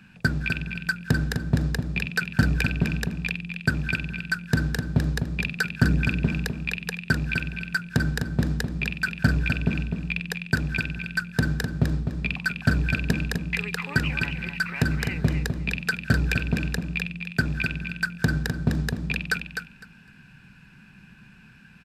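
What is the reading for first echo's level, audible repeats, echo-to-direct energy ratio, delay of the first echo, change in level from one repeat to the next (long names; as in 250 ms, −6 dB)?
−6.5 dB, 2, −6.5 dB, 254 ms, −15.5 dB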